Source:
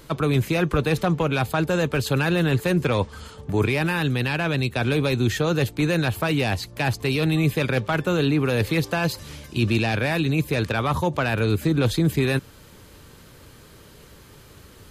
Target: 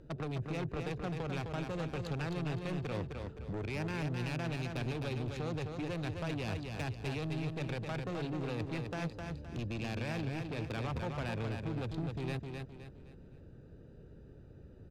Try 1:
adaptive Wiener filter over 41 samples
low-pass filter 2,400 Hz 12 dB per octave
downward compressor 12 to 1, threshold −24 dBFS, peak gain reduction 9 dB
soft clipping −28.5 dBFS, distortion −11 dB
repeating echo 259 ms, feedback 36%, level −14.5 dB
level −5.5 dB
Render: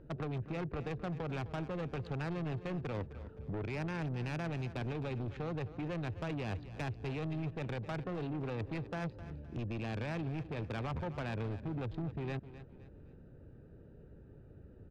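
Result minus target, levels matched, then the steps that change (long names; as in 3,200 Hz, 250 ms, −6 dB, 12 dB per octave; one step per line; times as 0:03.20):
8,000 Hz band −6.5 dB; echo-to-direct −9.5 dB
change: low-pass filter 7,700 Hz 12 dB per octave
change: repeating echo 259 ms, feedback 36%, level −5 dB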